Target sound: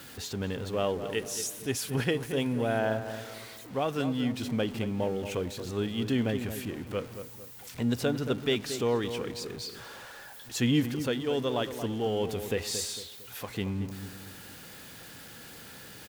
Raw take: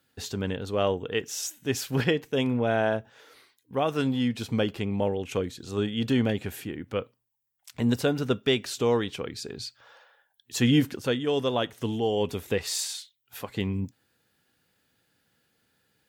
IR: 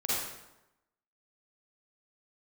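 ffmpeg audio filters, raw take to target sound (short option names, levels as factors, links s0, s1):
-filter_complex "[0:a]aeval=exprs='val(0)+0.5*0.0141*sgn(val(0))':c=same,asettb=1/sr,asplit=3[s0][s1][s2];[s0]atrim=end=1.104[s3];[s1]atrim=start=1.1:end=2.79,asetpts=PTS-STARTPTS,afade=t=in:d=0.004:c=qsin,afade=t=out:st=1.686:d=0.004:c=qsin,equalizer=f=9900:t=o:w=0.3:g=9.5[s4];[s2]atrim=start=2.786[s5];[s3][s4]acrossfade=d=0.004:c1=hsin:c2=qsin[s6];[s6][s5]acrossfade=d=0.004:c1=qsin:c2=hsin,asplit=2[s7][s8];[s8]adelay=226,lowpass=f=1500:p=1,volume=0.355,asplit=2[s9][s10];[s10]adelay=226,lowpass=f=1500:p=1,volume=0.41,asplit=2[s11][s12];[s12]adelay=226,lowpass=f=1500:p=1,volume=0.41,asplit=2[s13][s14];[s14]adelay=226,lowpass=f=1500:p=1,volume=0.41,asplit=2[s15][s16];[s16]adelay=226,lowpass=f=1500:p=1,volume=0.41[s17];[s7][s9][s11][s13][s15][s17]amix=inputs=6:normalize=0,volume=0.596"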